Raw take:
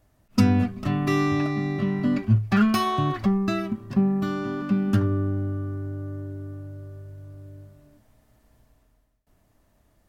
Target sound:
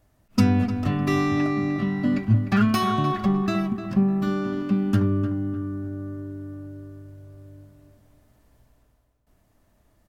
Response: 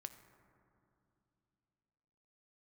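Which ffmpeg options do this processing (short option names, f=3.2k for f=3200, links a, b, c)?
-filter_complex "[0:a]asplit=2[a][b];[b]adelay=302,lowpass=f=2.1k:p=1,volume=-9dB,asplit=2[c][d];[d]adelay=302,lowpass=f=2.1k:p=1,volume=0.4,asplit=2[e][f];[f]adelay=302,lowpass=f=2.1k:p=1,volume=0.4,asplit=2[g][h];[h]adelay=302,lowpass=f=2.1k:p=1,volume=0.4[i];[a][c][e][g][i]amix=inputs=5:normalize=0"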